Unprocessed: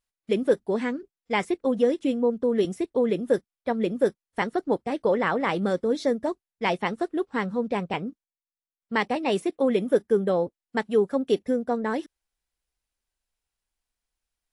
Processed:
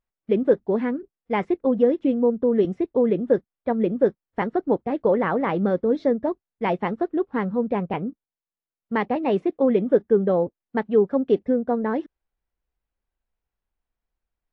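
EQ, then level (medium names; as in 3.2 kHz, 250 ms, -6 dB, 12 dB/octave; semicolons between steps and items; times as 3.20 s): tape spacing loss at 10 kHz 41 dB; +5.0 dB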